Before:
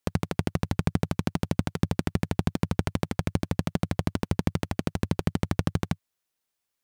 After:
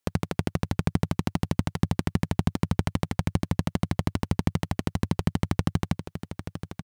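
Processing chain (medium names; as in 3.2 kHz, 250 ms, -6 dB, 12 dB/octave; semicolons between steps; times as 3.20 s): delay 881 ms -10 dB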